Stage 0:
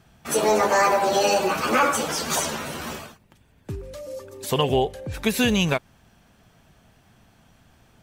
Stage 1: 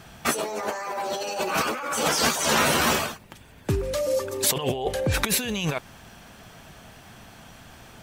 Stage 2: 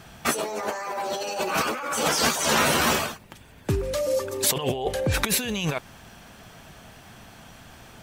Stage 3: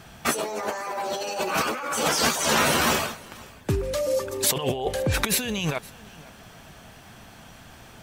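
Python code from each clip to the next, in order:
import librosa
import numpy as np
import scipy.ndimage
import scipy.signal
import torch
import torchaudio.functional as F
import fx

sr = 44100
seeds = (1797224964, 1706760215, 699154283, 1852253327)

y1 = fx.low_shelf(x, sr, hz=360.0, db=-6.0)
y1 = fx.over_compress(y1, sr, threshold_db=-32.0, ratio=-1.0)
y1 = F.gain(torch.from_numpy(y1), 6.0).numpy()
y2 = y1
y3 = y2 + 10.0 ** (-23.0 / 20.0) * np.pad(y2, (int(514 * sr / 1000.0), 0))[:len(y2)]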